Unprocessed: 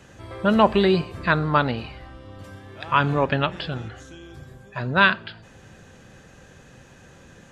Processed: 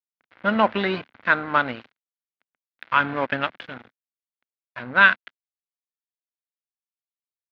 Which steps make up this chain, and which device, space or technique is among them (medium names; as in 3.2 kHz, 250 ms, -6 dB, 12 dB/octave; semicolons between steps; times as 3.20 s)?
blown loudspeaker (crossover distortion -30.5 dBFS; cabinet simulation 140–3800 Hz, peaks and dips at 160 Hz -10 dB, 250 Hz +3 dB, 390 Hz -5 dB, 1.5 kHz +7 dB, 2.1 kHz +6 dB); trim -1.5 dB